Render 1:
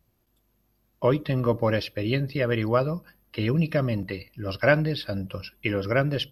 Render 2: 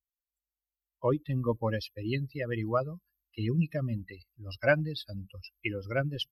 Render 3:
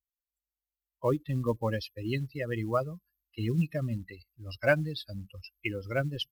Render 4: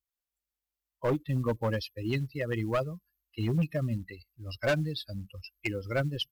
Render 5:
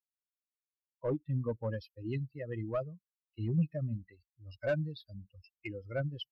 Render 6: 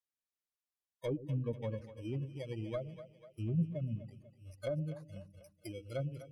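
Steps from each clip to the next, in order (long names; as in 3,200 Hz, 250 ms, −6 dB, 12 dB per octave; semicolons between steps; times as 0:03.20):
spectral dynamics exaggerated over time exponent 2; level −2.5 dB
floating-point word with a short mantissa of 4 bits
hard clipping −24 dBFS, distortion −11 dB; level +1.5 dB
every bin expanded away from the loudest bin 1.5 to 1
samples in bit-reversed order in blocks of 16 samples; treble cut that deepens with the level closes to 590 Hz, closed at −28.5 dBFS; echo with a time of its own for lows and highs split 450 Hz, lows 115 ms, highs 246 ms, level −12.5 dB; level −2.5 dB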